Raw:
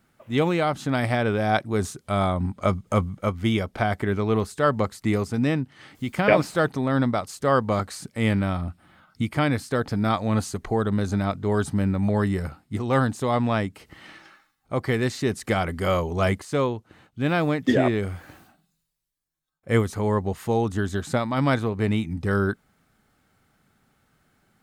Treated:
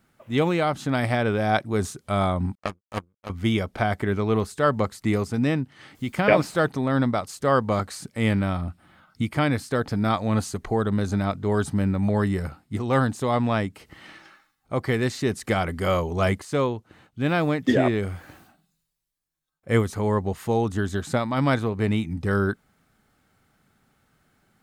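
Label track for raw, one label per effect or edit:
2.550000	3.300000	power-law curve exponent 3

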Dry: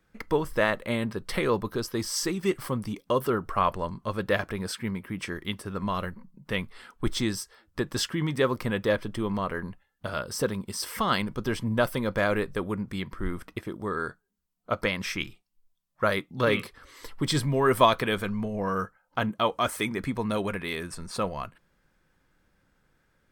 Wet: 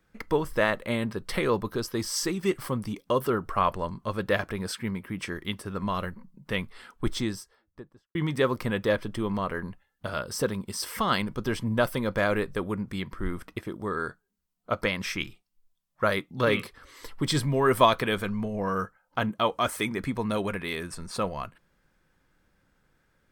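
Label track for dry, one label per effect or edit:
6.930000	8.150000	studio fade out

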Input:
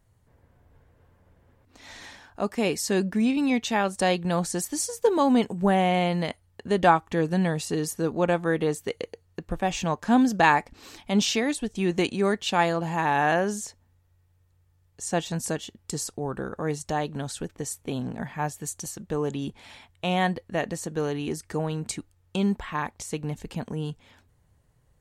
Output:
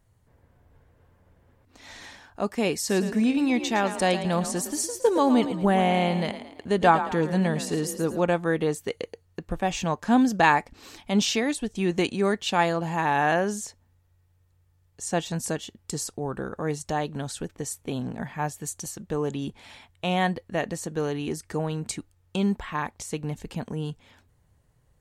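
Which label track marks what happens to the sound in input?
2.780000	8.200000	frequency-shifting echo 0.111 s, feedback 44%, per repeat +34 Hz, level -11 dB

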